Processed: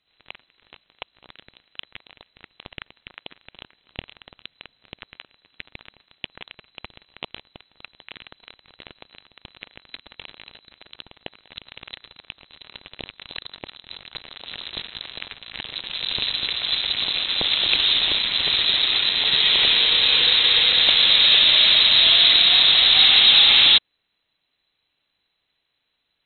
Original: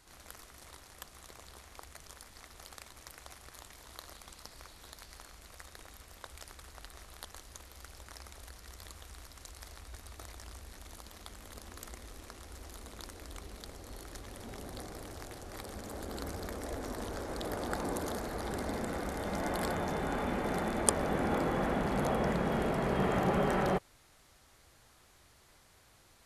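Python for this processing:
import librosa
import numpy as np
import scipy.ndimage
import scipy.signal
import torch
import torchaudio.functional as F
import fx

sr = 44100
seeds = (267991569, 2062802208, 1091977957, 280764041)

y = fx.leveller(x, sr, passes=5)
y = fx.freq_invert(y, sr, carrier_hz=4000)
y = fx.air_absorb(y, sr, metres=62.0)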